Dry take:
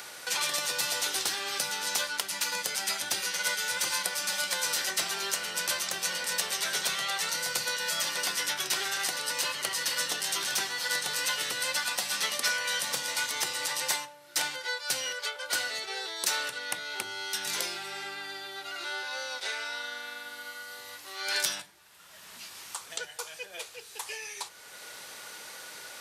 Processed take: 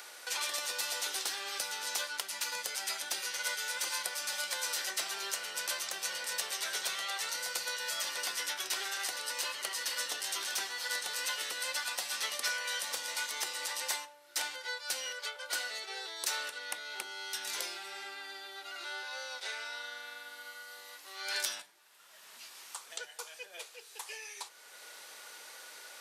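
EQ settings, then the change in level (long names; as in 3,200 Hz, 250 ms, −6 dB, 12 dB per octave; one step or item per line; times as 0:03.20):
high-pass filter 350 Hz 12 dB per octave
−5.5 dB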